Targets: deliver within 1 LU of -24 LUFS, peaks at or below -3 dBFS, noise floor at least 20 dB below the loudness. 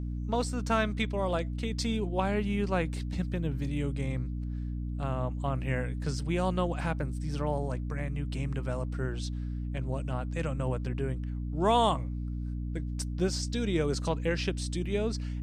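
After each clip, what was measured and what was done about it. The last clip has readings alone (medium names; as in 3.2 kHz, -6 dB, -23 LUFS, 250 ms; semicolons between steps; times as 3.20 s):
hum 60 Hz; highest harmonic 300 Hz; hum level -32 dBFS; loudness -32.0 LUFS; peak level -12.0 dBFS; loudness target -24.0 LUFS
-> de-hum 60 Hz, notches 5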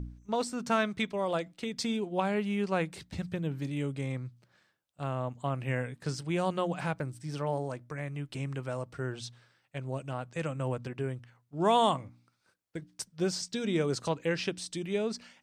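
hum not found; loudness -33.0 LUFS; peak level -13.0 dBFS; loudness target -24.0 LUFS
-> trim +9 dB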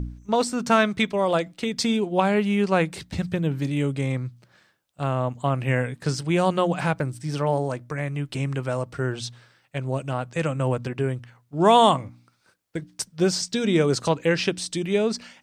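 loudness -24.0 LUFS; peak level -4.0 dBFS; noise floor -65 dBFS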